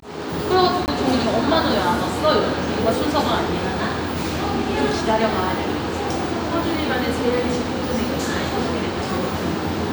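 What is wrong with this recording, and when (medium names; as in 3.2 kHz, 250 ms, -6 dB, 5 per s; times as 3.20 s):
0.86–0.88 s: dropout 19 ms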